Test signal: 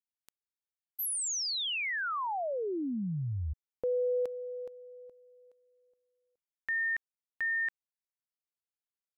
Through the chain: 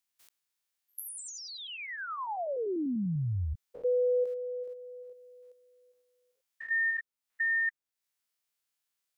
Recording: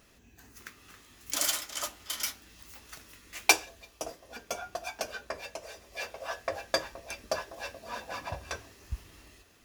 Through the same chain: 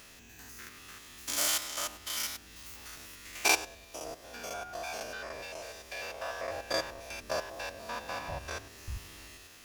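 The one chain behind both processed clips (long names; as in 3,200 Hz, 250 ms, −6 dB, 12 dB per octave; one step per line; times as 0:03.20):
spectrum averaged block by block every 100 ms
one half of a high-frequency compander encoder only
level +3 dB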